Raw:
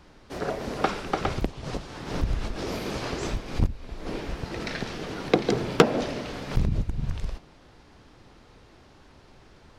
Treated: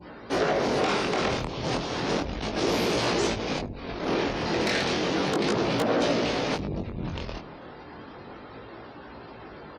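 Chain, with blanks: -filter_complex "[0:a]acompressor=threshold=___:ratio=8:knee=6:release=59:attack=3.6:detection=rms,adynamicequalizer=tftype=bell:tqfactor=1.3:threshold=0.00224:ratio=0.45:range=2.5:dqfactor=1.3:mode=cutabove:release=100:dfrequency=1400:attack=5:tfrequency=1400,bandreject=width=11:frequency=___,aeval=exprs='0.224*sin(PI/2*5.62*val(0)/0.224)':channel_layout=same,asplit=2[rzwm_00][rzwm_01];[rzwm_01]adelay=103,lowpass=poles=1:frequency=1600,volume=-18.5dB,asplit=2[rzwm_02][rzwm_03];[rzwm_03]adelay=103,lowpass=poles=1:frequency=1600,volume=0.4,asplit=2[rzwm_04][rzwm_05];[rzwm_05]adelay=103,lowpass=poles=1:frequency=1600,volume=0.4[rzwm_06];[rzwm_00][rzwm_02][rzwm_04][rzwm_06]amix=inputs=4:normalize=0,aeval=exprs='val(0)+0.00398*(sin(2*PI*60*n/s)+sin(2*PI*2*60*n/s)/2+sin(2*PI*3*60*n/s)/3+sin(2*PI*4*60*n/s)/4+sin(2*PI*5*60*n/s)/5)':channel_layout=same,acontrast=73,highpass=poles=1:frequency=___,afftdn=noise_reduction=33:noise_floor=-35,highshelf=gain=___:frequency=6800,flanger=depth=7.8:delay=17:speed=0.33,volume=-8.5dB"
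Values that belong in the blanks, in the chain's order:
-26dB, 7500, 260, -3.5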